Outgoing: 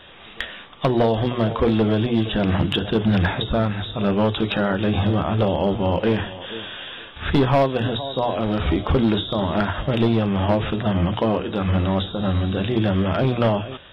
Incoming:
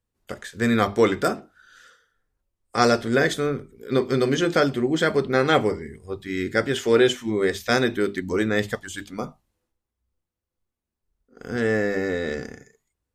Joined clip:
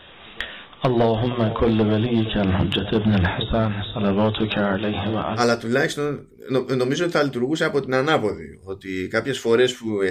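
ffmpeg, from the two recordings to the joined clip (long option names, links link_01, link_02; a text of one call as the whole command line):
ffmpeg -i cue0.wav -i cue1.wav -filter_complex "[0:a]asettb=1/sr,asplit=3[link_01][link_02][link_03];[link_01]atrim=end=4.784[link_04];[link_02]atrim=start=4.78:end=5.43,asetpts=PTS-STARTPTS,afade=type=in:duration=0.004:curve=qsin,afade=type=out:start_time=0.646:duration=0.004:curve=qsin,lowshelf=frequency=150:gain=-11.5[link_05];[link_03]atrim=start=5.426[link_06];[link_04][link_05]acrossfade=duration=0.004:curve1=hsin:curve2=qsin[link_07];[link_07][link_06]acrossfade=duration=0.004:curve1=qsin:curve2=hsin,apad=whole_dur=10.1,atrim=end=10.1,atrim=end=5.43,asetpts=PTS-STARTPTS[link_08];[1:a]atrim=start=2.76:end=7.51,asetpts=PTS-STARTPTS[link_09];[link_08][link_09]acrossfade=duration=0.08:curve1=tri:curve2=tri" out.wav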